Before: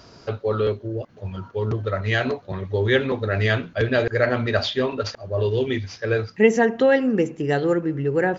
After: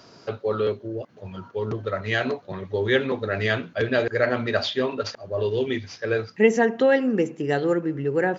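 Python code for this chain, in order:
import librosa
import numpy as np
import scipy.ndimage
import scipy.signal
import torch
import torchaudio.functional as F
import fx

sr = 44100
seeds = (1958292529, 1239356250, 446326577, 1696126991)

y = scipy.signal.sosfilt(scipy.signal.butter(2, 140.0, 'highpass', fs=sr, output='sos'), x)
y = y * 10.0 ** (-1.5 / 20.0)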